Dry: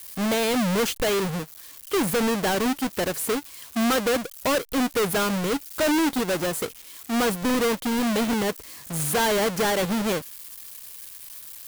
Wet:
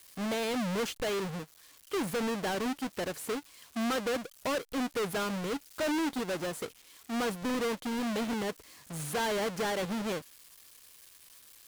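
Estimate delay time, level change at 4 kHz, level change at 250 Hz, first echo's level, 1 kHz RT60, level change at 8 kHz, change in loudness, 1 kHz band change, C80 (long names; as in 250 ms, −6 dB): no echo audible, −9.5 dB, −9.0 dB, no echo audible, no reverb audible, −11.5 dB, −9.0 dB, −8.5 dB, no reverb audible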